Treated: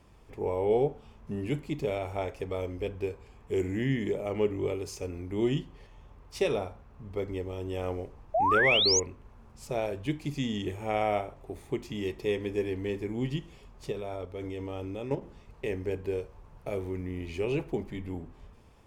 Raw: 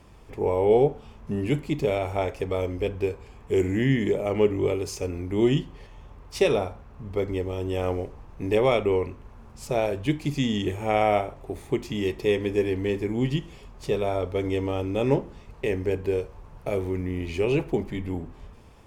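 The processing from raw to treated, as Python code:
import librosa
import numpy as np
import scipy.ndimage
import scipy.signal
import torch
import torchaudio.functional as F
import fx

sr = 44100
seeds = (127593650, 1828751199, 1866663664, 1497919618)

y = fx.spec_paint(x, sr, seeds[0], shape='rise', start_s=8.34, length_s=0.66, low_hz=610.0, high_hz=7000.0, level_db=-18.0)
y = fx.level_steps(y, sr, step_db=10, at=(13.91, 15.21), fade=0.02)
y = y * librosa.db_to_amplitude(-6.5)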